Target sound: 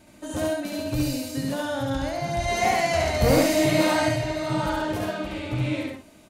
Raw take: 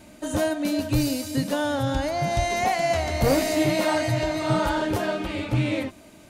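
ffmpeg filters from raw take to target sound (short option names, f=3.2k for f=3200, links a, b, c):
-filter_complex "[0:a]asettb=1/sr,asplit=3[a][b][c];[a]atrim=end=2.484[d];[b]atrim=start=2.48:end=4.09,asetpts=PTS-STARTPTS,afade=t=in:d=0.004:c=qsin,afade=t=out:st=1.606:d=0.004:c=qsin,acontrast=23[e];[c]atrim=start=4.086[f];[d][e]acrossfade=d=0.004:c1=hsin:c2=qsin[g];[g][f]acrossfade=d=0.004:c1=qsin:c2=hsin,asplit=2[h][i];[i]aecho=0:1:69.97|122.4:0.891|0.447[j];[h][j]amix=inputs=2:normalize=0,volume=-5.5dB"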